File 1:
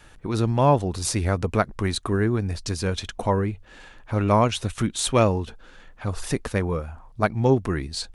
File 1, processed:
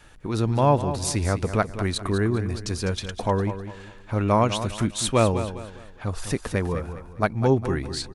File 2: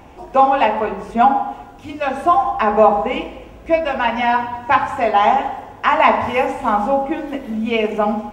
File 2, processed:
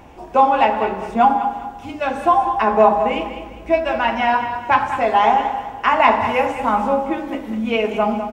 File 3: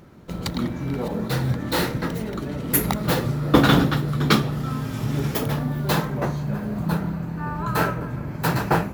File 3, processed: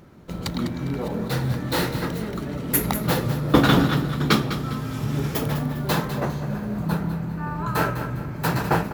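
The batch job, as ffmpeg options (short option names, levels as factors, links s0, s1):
-af "aecho=1:1:202|404|606|808:0.282|0.0986|0.0345|0.0121,volume=0.891"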